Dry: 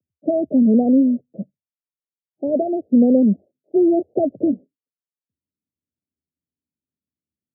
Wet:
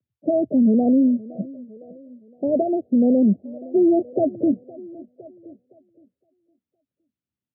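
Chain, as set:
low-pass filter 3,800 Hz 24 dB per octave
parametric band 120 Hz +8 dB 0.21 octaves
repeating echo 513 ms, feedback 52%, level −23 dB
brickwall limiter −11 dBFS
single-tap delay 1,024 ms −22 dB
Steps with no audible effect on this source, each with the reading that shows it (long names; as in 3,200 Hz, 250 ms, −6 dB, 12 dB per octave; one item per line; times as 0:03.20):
low-pass filter 3,800 Hz: nothing at its input above 760 Hz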